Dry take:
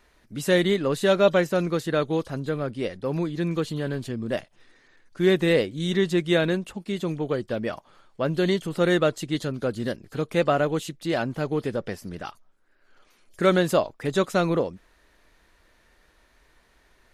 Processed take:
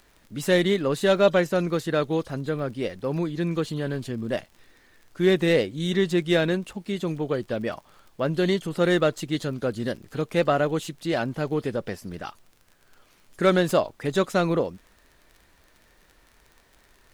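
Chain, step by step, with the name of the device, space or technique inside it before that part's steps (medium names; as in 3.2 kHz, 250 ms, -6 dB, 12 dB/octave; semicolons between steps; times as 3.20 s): record under a worn stylus (tracing distortion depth 0.023 ms; crackle 34 per s -40 dBFS; pink noise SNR 39 dB)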